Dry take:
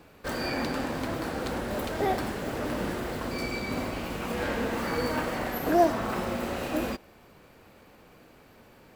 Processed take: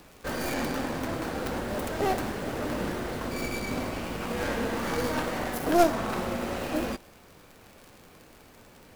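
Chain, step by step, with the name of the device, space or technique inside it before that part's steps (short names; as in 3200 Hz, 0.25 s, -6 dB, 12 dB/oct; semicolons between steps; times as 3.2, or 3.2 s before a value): record under a worn stylus (tracing distortion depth 0.42 ms; crackle 75/s -39 dBFS; pink noise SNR 28 dB)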